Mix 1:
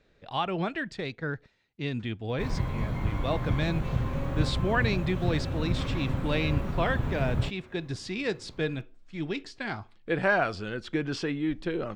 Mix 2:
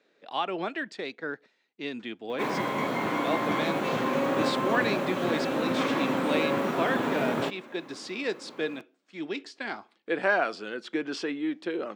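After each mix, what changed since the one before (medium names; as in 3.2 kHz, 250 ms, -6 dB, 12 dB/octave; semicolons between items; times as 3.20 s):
background +11.0 dB; master: add high-pass 250 Hz 24 dB/octave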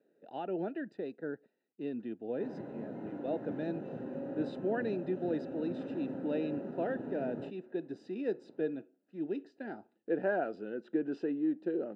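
background -10.0 dB; master: add boxcar filter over 40 samples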